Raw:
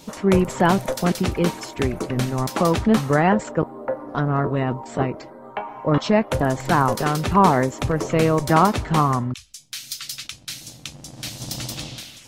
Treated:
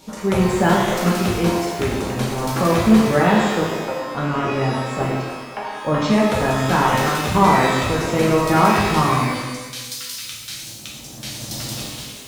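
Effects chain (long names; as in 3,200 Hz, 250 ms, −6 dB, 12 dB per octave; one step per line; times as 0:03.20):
reverb with rising layers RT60 1.2 s, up +12 semitones, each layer −8 dB, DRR −3.5 dB
level −3 dB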